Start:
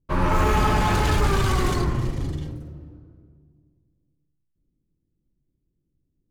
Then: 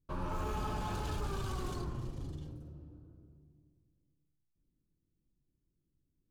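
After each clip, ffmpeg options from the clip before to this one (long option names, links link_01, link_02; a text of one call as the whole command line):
ffmpeg -i in.wav -af "equalizer=frequency=2000:width_type=o:width=0.42:gain=-10.5,acompressor=threshold=-46dB:ratio=1.5,volume=-6.5dB" out.wav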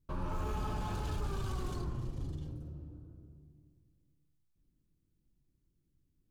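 ffmpeg -i in.wav -filter_complex "[0:a]lowshelf=frequency=190:gain=4.5,asplit=2[link_01][link_02];[link_02]alimiter=level_in=10dB:limit=-24dB:level=0:latency=1:release=283,volume=-10dB,volume=1dB[link_03];[link_01][link_03]amix=inputs=2:normalize=0,volume=-5.5dB" out.wav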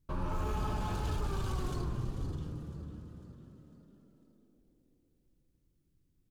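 ffmpeg -i in.wav -filter_complex "[0:a]asplit=6[link_01][link_02][link_03][link_04][link_05][link_06];[link_02]adelay=500,afreqshift=44,volume=-14dB[link_07];[link_03]adelay=1000,afreqshift=88,volume=-20.4dB[link_08];[link_04]adelay=1500,afreqshift=132,volume=-26.8dB[link_09];[link_05]adelay=2000,afreqshift=176,volume=-33.1dB[link_10];[link_06]adelay=2500,afreqshift=220,volume=-39.5dB[link_11];[link_01][link_07][link_08][link_09][link_10][link_11]amix=inputs=6:normalize=0,volume=2dB" out.wav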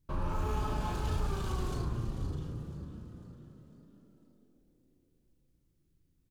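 ffmpeg -i in.wav -filter_complex "[0:a]asplit=2[link_01][link_02];[link_02]adelay=35,volume=-6dB[link_03];[link_01][link_03]amix=inputs=2:normalize=0" out.wav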